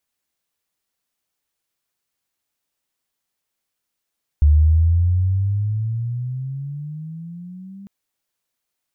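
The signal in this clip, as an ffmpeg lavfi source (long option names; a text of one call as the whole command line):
ffmpeg -f lavfi -i "aevalsrc='pow(10,(-8.5-26.5*t/3.45)/20)*sin(2*PI*72.9*3.45/(17.5*log(2)/12)*(exp(17.5*log(2)/12*t/3.45)-1))':duration=3.45:sample_rate=44100" out.wav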